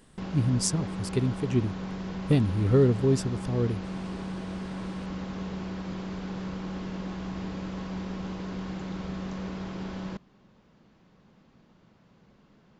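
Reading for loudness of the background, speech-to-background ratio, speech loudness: -36.0 LUFS, 9.5 dB, -26.5 LUFS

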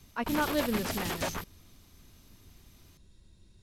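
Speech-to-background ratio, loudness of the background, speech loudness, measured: 2.0 dB, -35.0 LUFS, -33.0 LUFS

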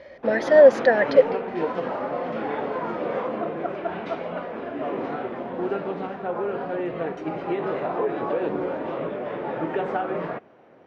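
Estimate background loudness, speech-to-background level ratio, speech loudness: -28.5 LUFS, 10.5 dB, -18.0 LUFS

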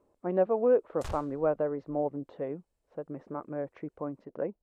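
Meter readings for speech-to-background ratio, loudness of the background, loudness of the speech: 13.5 dB, -45.5 LUFS, -32.0 LUFS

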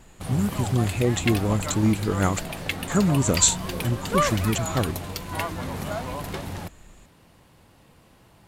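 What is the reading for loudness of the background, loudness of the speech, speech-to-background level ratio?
-30.5 LUFS, -24.0 LUFS, 6.5 dB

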